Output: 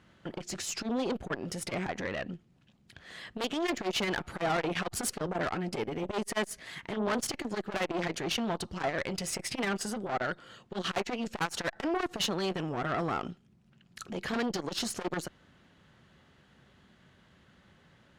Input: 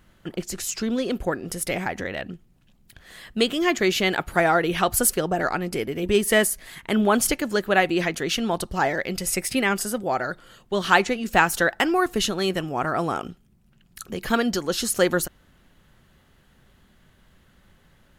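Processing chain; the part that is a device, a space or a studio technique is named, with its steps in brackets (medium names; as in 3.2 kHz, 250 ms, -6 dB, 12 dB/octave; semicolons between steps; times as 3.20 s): valve radio (band-pass 88–6000 Hz; valve stage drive 23 dB, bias 0.4; transformer saturation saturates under 530 Hz)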